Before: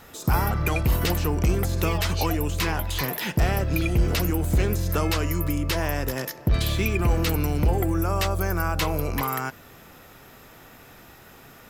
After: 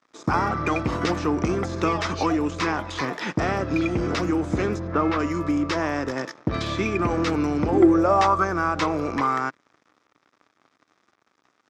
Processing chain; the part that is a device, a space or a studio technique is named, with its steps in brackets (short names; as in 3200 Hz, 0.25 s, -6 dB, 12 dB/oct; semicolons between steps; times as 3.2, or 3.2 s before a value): 4.78–5.18 LPF 1500 Hz -> 2800 Hz 12 dB/oct; blown loudspeaker (crossover distortion -42.5 dBFS; speaker cabinet 140–5800 Hz, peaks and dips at 150 Hz -4 dB, 300 Hz +6 dB, 1200 Hz +7 dB, 2900 Hz -7 dB, 4300 Hz -6 dB); 7.72–8.43 bell 270 Hz -> 1300 Hz +14.5 dB 0.42 oct; gain +2.5 dB